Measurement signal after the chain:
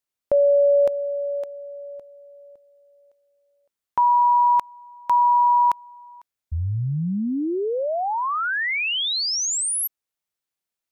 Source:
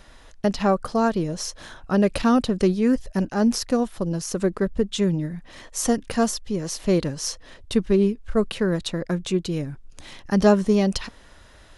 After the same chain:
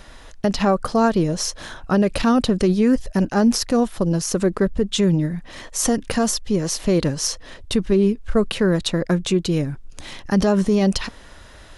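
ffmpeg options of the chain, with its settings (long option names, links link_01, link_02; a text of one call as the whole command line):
ffmpeg -i in.wav -af "alimiter=level_in=14dB:limit=-1dB:release=50:level=0:latency=1,volume=-8dB" out.wav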